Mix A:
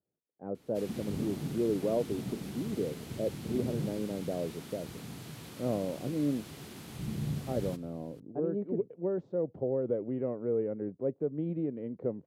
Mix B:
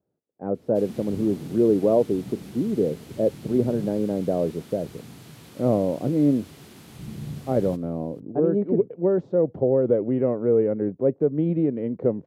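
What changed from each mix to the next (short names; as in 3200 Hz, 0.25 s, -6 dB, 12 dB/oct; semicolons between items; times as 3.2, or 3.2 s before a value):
speech +11.0 dB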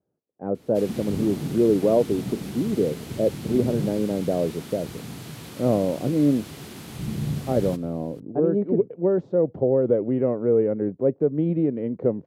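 background +7.0 dB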